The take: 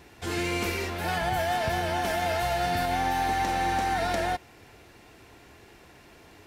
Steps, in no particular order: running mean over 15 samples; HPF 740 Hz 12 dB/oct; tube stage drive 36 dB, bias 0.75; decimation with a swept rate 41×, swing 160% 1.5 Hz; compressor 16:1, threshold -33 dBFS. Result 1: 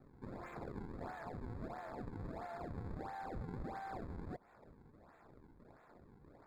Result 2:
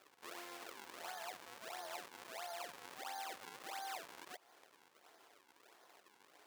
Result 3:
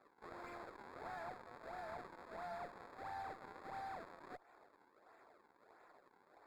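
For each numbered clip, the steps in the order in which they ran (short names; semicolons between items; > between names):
compressor > tube stage > HPF > decimation with a swept rate > running mean; compressor > tube stage > running mean > decimation with a swept rate > HPF; compressor > decimation with a swept rate > HPF > tube stage > running mean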